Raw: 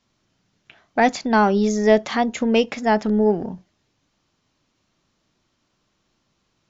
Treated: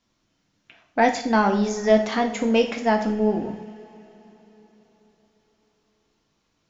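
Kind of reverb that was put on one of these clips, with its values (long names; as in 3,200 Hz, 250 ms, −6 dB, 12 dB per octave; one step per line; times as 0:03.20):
coupled-rooms reverb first 0.51 s, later 4.2 s, from −21 dB, DRR 3 dB
level −3.5 dB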